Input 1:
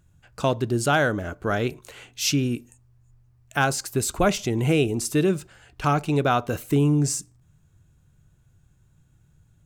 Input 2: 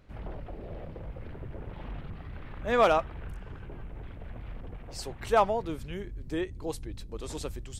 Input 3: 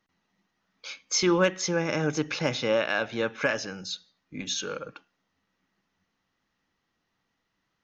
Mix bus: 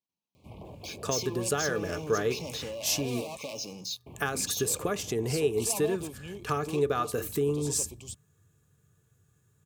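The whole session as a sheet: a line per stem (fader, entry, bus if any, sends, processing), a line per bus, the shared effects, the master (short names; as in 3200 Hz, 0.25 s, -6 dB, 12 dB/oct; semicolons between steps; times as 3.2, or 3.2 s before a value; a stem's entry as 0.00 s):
-6.5 dB, 0.65 s, no bus, no send, compressor 10:1, threshold -23 dBFS, peak gain reduction 9 dB; small resonant body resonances 440/1200/1700 Hz, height 14 dB, ringing for 60 ms
-1.0 dB, 0.35 s, muted 3.37–4.06, bus A, no send, hard clip -31.5 dBFS, distortion -3 dB
-14.5 dB, 0.00 s, bus A, no send, sample leveller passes 3
bus A: 0.0 dB, elliptic band-stop 1100–2300 Hz; compressor, threshold -35 dBFS, peak gain reduction 7.5 dB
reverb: off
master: HPF 77 Hz 24 dB/oct; high shelf 5600 Hz +11 dB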